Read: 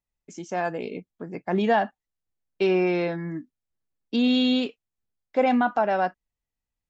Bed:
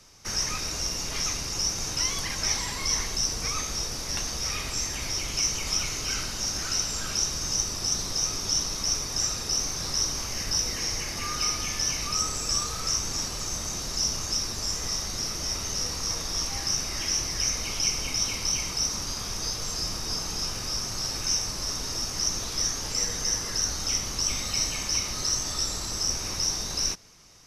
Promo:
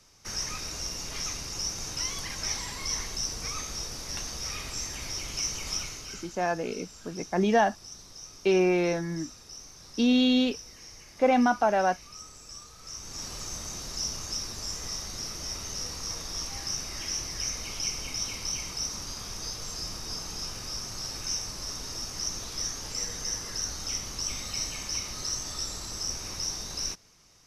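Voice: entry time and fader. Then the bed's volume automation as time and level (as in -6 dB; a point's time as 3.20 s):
5.85 s, -1.0 dB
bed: 5.76 s -5 dB
6.43 s -18 dB
12.77 s -18 dB
13.31 s -5.5 dB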